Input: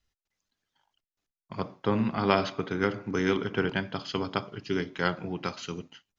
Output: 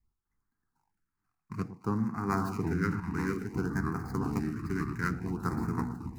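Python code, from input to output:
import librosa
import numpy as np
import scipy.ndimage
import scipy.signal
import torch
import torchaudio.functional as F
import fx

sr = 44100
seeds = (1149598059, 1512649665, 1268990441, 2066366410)

p1 = scipy.signal.medfilt(x, 15)
p2 = fx.echo_pitch(p1, sr, ms=290, semitones=-4, count=3, db_per_echo=-6.0)
p3 = fx.fixed_phaser(p2, sr, hz=1400.0, stages=4)
p4 = p3 + fx.echo_alternate(p3, sr, ms=112, hz=1300.0, feedback_pct=64, wet_db=-12, dry=0)
p5 = fx.rider(p4, sr, range_db=4, speed_s=0.5)
p6 = fx.filter_lfo_notch(p5, sr, shape='sine', hz=0.57, low_hz=570.0, high_hz=3200.0, q=0.97)
y = fx.env_flatten(p6, sr, amount_pct=50, at=(2.32, 3.0))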